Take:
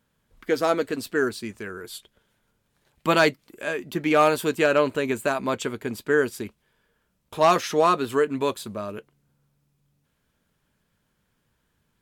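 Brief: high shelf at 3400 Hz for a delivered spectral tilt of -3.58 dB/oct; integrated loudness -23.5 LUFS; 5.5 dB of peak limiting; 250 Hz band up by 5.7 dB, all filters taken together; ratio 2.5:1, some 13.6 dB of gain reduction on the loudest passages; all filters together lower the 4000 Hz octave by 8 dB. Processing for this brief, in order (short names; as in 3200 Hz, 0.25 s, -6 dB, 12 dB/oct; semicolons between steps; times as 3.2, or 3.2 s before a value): bell 250 Hz +7.5 dB; high shelf 3400 Hz -8 dB; bell 4000 Hz -5 dB; compressor 2.5:1, threshold -35 dBFS; gain +13.5 dB; limiter -12 dBFS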